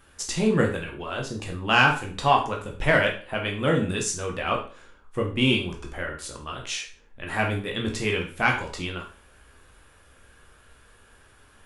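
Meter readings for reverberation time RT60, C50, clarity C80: 0.40 s, 8.5 dB, 13.0 dB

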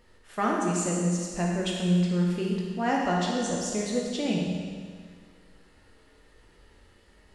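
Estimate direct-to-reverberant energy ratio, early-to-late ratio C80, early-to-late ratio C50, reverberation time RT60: −3.0 dB, 2.0 dB, 0.0 dB, 1.8 s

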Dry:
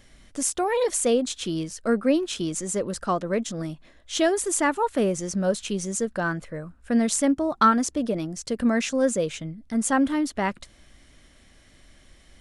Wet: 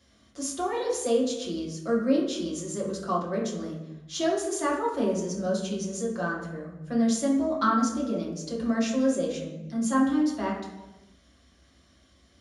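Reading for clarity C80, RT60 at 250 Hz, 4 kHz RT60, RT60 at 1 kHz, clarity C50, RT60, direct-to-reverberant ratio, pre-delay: 7.0 dB, 1.4 s, 0.75 s, 0.95 s, 4.0 dB, 1.1 s, −5.5 dB, 3 ms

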